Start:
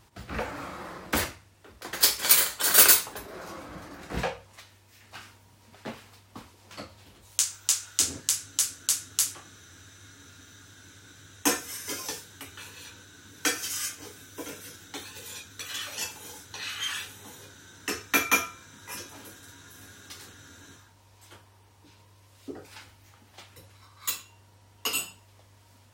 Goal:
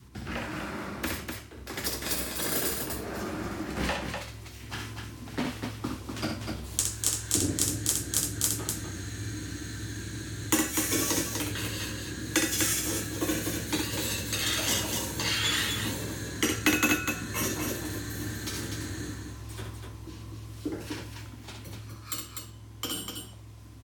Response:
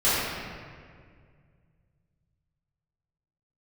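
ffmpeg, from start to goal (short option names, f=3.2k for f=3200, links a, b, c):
-filter_complex "[0:a]lowshelf=f=370:t=q:w=1.5:g=7,acrossover=split=260|890[a][b][c];[a]acompressor=threshold=-39dB:ratio=4[d];[b]acompressor=threshold=-45dB:ratio=4[e];[c]acompressor=threshold=-34dB:ratio=4[f];[d][e][f]amix=inputs=3:normalize=0,aeval=exprs='val(0)+0.00158*(sin(2*PI*60*n/s)+sin(2*PI*2*60*n/s)/2+sin(2*PI*3*60*n/s)/3+sin(2*PI*4*60*n/s)/4+sin(2*PI*5*60*n/s)/5)':c=same,asetrate=48000,aresample=44100,dynaudnorm=f=890:g=9:m=7.5dB,adynamicequalizer=threshold=0.00398:dfrequency=580:dqfactor=1.7:tfrequency=580:tqfactor=1.7:attack=5:release=100:ratio=0.375:range=2.5:mode=boostabove:tftype=bell,asplit=2[g][h];[h]aecho=0:1:64.14|247.8:0.562|0.562[i];[g][i]amix=inputs=2:normalize=0"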